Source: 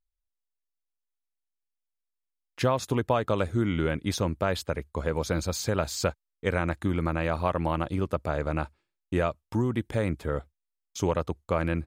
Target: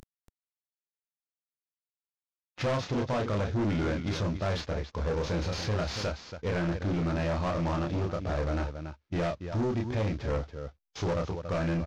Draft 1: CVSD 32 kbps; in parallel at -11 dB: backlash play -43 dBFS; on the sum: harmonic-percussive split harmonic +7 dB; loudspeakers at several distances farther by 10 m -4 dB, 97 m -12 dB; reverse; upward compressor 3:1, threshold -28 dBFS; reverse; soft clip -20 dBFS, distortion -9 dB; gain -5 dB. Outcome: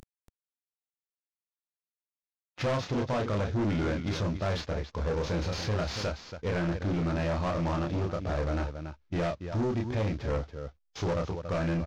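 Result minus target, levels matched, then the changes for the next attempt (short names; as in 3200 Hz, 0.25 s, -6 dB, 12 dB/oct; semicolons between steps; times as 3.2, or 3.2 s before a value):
backlash: distortion +11 dB
change: backlash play -54.5 dBFS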